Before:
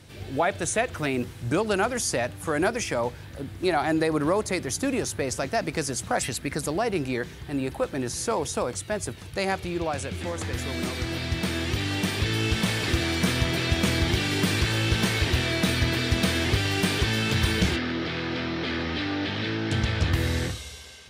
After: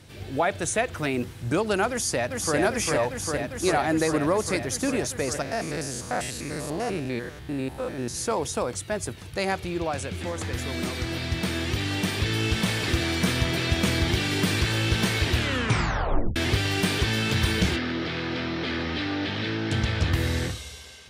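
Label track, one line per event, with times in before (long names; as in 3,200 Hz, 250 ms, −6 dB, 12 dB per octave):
1.900000	2.570000	delay throw 400 ms, feedback 85%, level −2.5 dB
5.420000	8.150000	spectrum averaged block by block every 100 ms
15.330000	15.330000	tape stop 1.03 s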